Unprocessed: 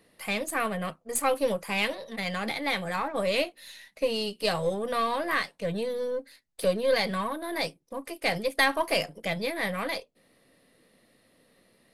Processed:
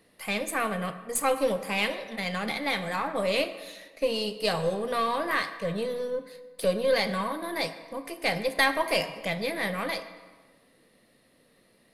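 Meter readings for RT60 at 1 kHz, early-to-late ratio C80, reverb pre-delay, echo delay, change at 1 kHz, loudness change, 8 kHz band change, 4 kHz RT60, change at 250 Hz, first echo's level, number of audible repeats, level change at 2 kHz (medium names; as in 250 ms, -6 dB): 1.4 s, 12.0 dB, 16 ms, no echo, +0.5 dB, +0.5 dB, 0.0 dB, 1.0 s, +0.5 dB, no echo, no echo, +0.5 dB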